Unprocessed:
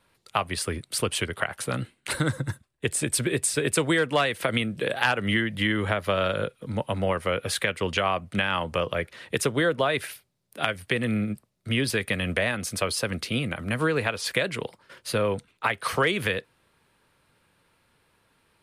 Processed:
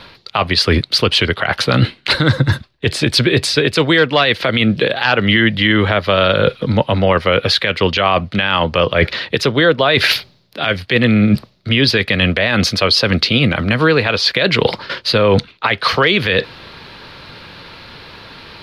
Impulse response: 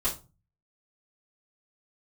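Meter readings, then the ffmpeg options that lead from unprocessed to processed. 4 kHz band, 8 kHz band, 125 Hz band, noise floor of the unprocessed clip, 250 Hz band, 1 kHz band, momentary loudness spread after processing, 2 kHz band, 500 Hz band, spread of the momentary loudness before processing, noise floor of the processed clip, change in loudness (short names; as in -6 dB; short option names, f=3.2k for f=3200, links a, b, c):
+16.0 dB, +0.5 dB, +13.5 dB, -69 dBFS, +12.5 dB, +10.5 dB, 5 LU, +11.5 dB, +11.5 dB, 8 LU, -49 dBFS, +12.5 dB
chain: -af "highshelf=f=6.2k:t=q:w=3:g=-13,areverse,acompressor=threshold=-39dB:ratio=6,areverse,alimiter=level_in=29.5dB:limit=-1dB:release=50:level=0:latency=1,volume=-1dB"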